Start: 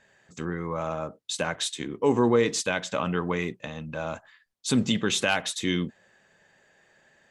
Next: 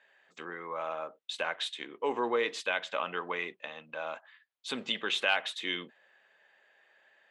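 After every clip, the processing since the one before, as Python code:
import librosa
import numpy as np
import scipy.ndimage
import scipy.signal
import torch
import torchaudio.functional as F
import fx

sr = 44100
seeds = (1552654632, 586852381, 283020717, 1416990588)

y = scipy.signal.sosfilt(scipy.signal.butter(2, 540.0, 'highpass', fs=sr, output='sos'), x)
y = fx.high_shelf_res(y, sr, hz=4500.0, db=-11.0, q=1.5)
y = y * 10.0 ** (-3.5 / 20.0)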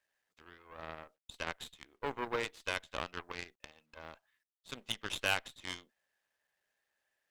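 y = fx.cheby_harmonics(x, sr, harmonics=(3, 6, 7), levels_db=(-33, -22, -19), full_scale_db=-13.5)
y = fx.quant_companded(y, sr, bits=8)
y = y * 10.0 ** (-3.5 / 20.0)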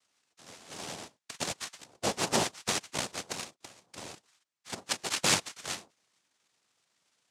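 y = fx.noise_vocoder(x, sr, seeds[0], bands=2)
y = y * 10.0 ** (6.5 / 20.0)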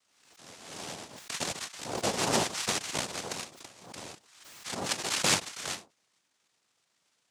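y = fx.pre_swell(x, sr, db_per_s=58.0)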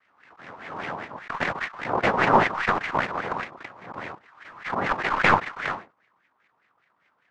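y = fx.tracing_dist(x, sr, depth_ms=0.037)
y = fx.filter_lfo_lowpass(y, sr, shape='sine', hz=5.0, low_hz=990.0, high_hz=2100.0, q=4.1)
y = y * 10.0 ** (6.5 / 20.0)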